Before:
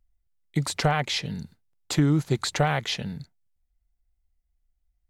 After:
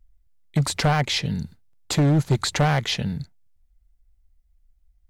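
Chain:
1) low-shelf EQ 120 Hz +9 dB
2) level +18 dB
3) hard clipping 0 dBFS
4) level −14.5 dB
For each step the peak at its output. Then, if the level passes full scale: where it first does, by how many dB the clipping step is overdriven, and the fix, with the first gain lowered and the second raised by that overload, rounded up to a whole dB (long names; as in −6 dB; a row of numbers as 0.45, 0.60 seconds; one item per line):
−8.0, +10.0, 0.0, −14.5 dBFS
step 2, 10.0 dB
step 2 +8 dB, step 4 −4.5 dB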